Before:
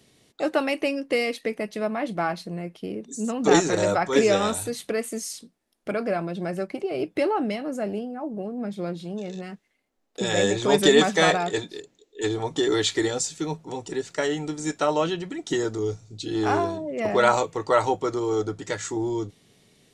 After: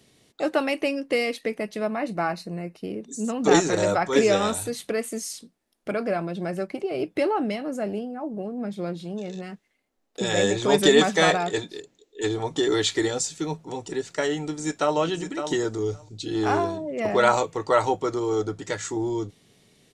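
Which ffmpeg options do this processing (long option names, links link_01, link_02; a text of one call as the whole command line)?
ffmpeg -i in.wav -filter_complex "[0:a]asettb=1/sr,asplit=3[link_01][link_02][link_03];[link_01]atrim=end=1.964[link_04];[link_02]atrim=start=1.96:end=2.84,asetpts=PTS-STARTPTS,afade=type=in:duration=0.004:curve=qsin,afade=type=out:start_time=0.876:duration=0.004:curve=qsin,asuperstop=centerf=3300:order=4:qfactor=5.4[link_05];[link_03]atrim=start=2.836[link_06];[link_04][link_05]acrossfade=duration=0.004:curve1=hsin:curve2=qsin[link_07];[link_07][link_06]acrossfade=duration=0.004:curve1=qsin:curve2=hsin,asplit=2[link_08][link_09];[link_09]afade=type=in:start_time=14.41:duration=0.01,afade=type=out:start_time=14.96:duration=0.01,aecho=0:1:560|1120:0.375837|0.0375837[link_10];[link_08][link_10]amix=inputs=2:normalize=0" out.wav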